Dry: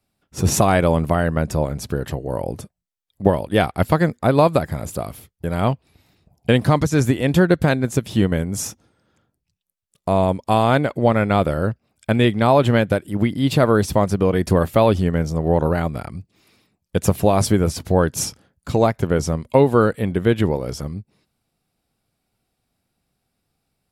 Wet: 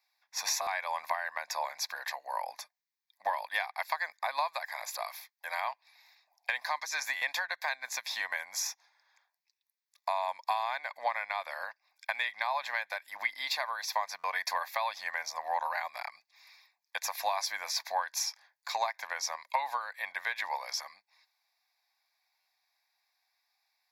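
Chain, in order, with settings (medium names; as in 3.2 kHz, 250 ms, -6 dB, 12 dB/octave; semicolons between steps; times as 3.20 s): high-pass 1 kHz 24 dB/octave; treble shelf 4.6 kHz -5 dB; compression 12:1, threshold -31 dBFS, peak gain reduction 13.5 dB; static phaser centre 2 kHz, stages 8; buffer glitch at 0.61/7.16/14.18/22.40 s, samples 512, times 4; trim +6 dB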